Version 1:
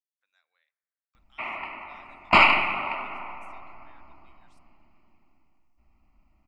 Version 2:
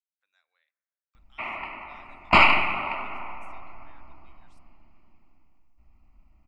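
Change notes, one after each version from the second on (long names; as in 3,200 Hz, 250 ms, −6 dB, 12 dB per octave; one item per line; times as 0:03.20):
background: add low-shelf EQ 110 Hz +7.5 dB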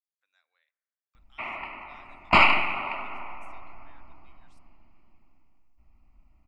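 background: send −9.5 dB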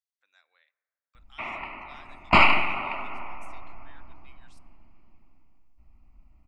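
speech +7.5 dB
master: add low-shelf EQ 360 Hz +4 dB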